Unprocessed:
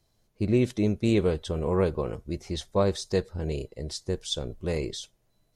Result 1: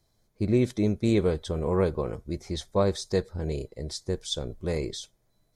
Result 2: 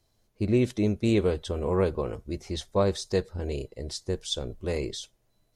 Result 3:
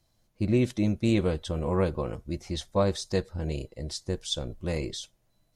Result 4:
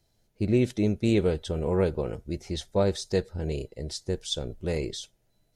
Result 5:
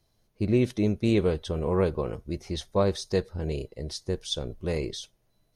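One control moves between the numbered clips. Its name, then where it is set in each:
notch, frequency: 2800, 160, 420, 1100, 7500 Hz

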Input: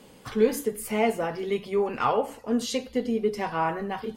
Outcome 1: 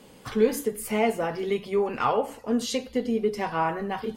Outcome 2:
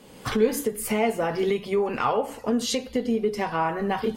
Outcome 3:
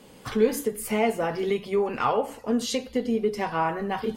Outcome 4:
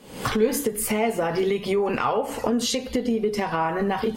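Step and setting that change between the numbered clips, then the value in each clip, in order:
recorder AGC, rising by: 5.3, 33, 13, 91 dB/s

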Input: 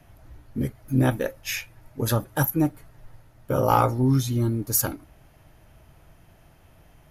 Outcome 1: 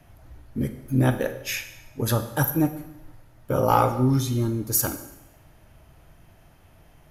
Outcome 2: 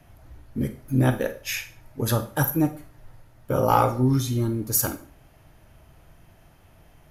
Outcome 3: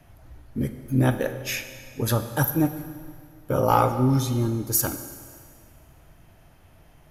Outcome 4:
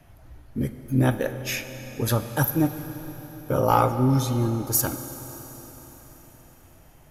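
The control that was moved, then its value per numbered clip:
Schroeder reverb, RT60: 0.9, 0.38, 1.9, 4.6 s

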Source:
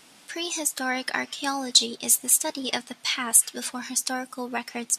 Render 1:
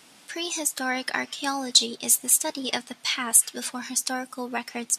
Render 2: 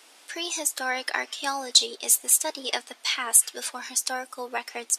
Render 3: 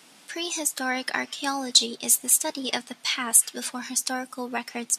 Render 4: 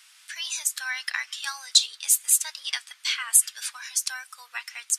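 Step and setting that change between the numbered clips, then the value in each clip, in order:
HPF, cutoff: 45, 350, 130, 1300 Hz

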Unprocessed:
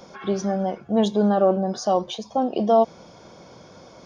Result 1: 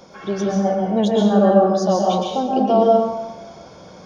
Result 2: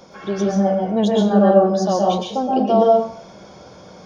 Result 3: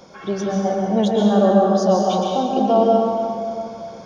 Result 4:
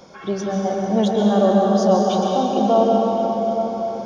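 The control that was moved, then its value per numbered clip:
plate-style reverb, RT60: 1.1, 0.51, 2.5, 5.3 s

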